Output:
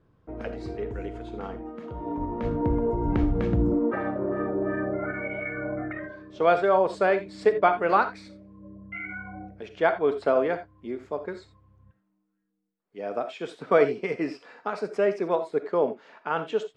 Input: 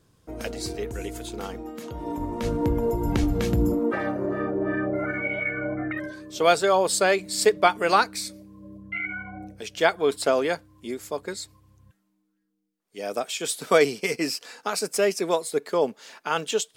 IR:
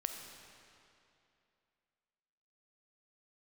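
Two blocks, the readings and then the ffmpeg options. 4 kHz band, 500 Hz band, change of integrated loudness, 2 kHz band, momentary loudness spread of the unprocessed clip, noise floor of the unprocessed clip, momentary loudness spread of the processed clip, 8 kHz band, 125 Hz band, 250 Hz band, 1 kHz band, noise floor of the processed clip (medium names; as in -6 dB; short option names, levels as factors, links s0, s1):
-14.5 dB, -0.5 dB, -1.5 dB, -4.5 dB, 15 LU, -72 dBFS, 16 LU, under -25 dB, -1.0 dB, -1.0 dB, -1.0 dB, -73 dBFS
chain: -filter_complex "[0:a]lowpass=1700[s0];[1:a]atrim=start_sample=2205,afade=t=out:st=0.14:d=0.01,atrim=end_sample=6615[s1];[s0][s1]afir=irnorm=-1:irlink=0"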